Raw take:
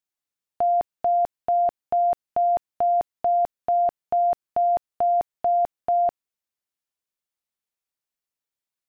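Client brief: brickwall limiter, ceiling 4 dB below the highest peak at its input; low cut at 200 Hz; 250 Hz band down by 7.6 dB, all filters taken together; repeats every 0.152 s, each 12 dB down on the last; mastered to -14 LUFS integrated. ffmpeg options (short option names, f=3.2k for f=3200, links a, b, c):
-af "highpass=200,equalizer=f=250:t=o:g=-9,alimiter=limit=-21.5dB:level=0:latency=1,aecho=1:1:152|304|456:0.251|0.0628|0.0157,volume=13.5dB"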